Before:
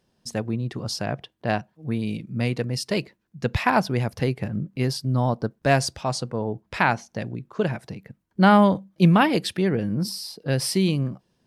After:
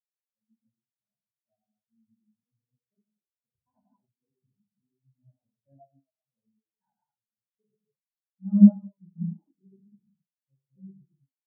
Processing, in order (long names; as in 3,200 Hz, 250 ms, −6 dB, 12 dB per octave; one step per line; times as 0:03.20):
high-shelf EQ 2,200 Hz −6 dB
mains-hum notches 60/120/180/240/300/360/420 Hz
reverb whose tail is shaped and stops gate 320 ms flat, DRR −5 dB
every bin expanded away from the loudest bin 4 to 1
level −5 dB